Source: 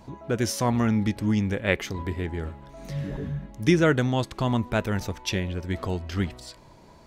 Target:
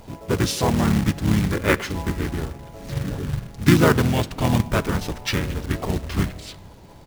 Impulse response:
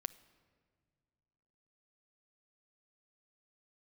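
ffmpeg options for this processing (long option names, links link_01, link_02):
-filter_complex "[0:a]asplit=4[link_01][link_02][link_03][link_04];[link_02]asetrate=22050,aresample=44100,atempo=2,volume=-7dB[link_05];[link_03]asetrate=29433,aresample=44100,atempo=1.49831,volume=-3dB[link_06];[link_04]asetrate=37084,aresample=44100,atempo=1.18921,volume=-2dB[link_07];[link_01][link_05][link_06][link_07]amix=inputs=4:normalize=0,acrusher=bits=3:mode=log:mix=0:aa=0.000001,asplit=2[link_08][link_09];[1:a]atrim=start_sample=2205[link_10];[link_09][link_10]afir=irnorm=-1:irlink=0,volume=14dB[link_11];[link_08][link_11]amix=inputs=2:normalize=0,volume=-13.5dB"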